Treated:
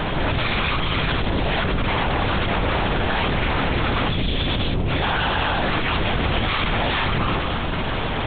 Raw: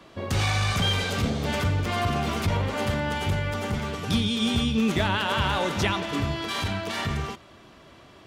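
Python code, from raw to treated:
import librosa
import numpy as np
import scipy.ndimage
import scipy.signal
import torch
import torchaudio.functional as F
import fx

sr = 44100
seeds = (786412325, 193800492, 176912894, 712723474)

y = fx.hum_notches(x, sr, base_hz=50, count=8)
y = fx.over_compress(y, sr, threshold_db=-30.0, ratio=-0.5)
y = fx.pitch_keep_formants(y, sr, semitones=-11.0)
y = fx.fuzz(y, sr, gain_db=52.0, gate_db=-58.0)
y = fx.lpc_vocoder(y, sr, seeds[0], excitation='whisper', order=8)
y = F.gain(torch.from_numpy(y), -6.5).numpy()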